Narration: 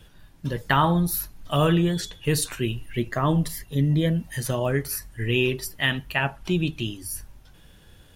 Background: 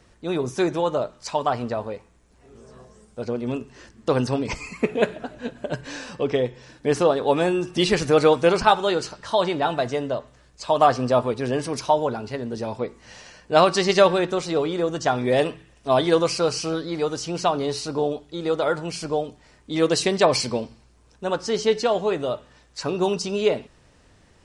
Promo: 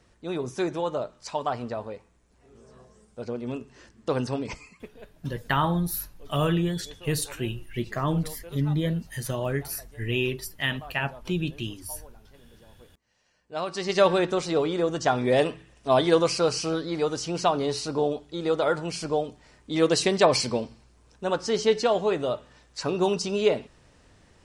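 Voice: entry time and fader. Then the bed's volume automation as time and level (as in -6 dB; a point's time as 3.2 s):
4.80 s, -4.0 dB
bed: 4.46 s -5.5 dB
5.01 s -27.5 dB
13.14 s -27.5 dB
14.12 s -1.5 dB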